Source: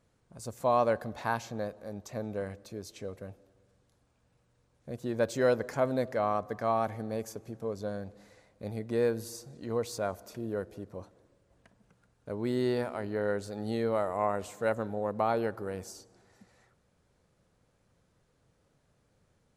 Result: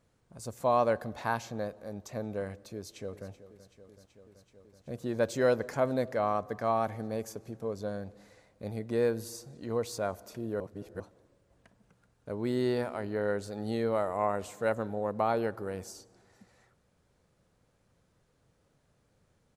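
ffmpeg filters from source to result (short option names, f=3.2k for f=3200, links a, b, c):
-filter_complex "[0:a]asplit=2[a][b];[b]afade=t=in:st=2.74:d=0.01,afade=t=out:st=3.29:d=0.01,aecho=0:1:380|760|1140|1520|1900|2280|2660|3040|3420|3800|4180|4560:0.177828|0.151154|0.128481|0.109209|0.0928273|0.0789032|0.0670677|0.0570076|0.0484564|0.041188|0.0350098|0.0297583[c];[a][c]amix=inputs=2:normalize=0,asplit=3[d][e][f];[d]atrim=end=10.602[g];[e]atrim=start=10.598:end=11.002,asetpts=PTS-STARTPTS,areverse[h];[f]atrim=start=10.998[i];[g][h]acrossfade=d=0.004:c1=hsin:c2=hsin[j];[j][i]acrossfade=d=0.004:c1=hsin:c2=hsin"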